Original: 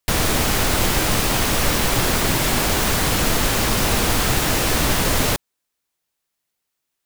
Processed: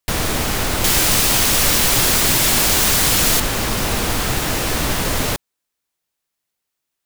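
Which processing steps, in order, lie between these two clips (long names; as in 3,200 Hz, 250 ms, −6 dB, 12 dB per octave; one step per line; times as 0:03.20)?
0:00.84–0:03.40: high-shelf EQ 2,600 Hz +9.5 dB
level −1 dB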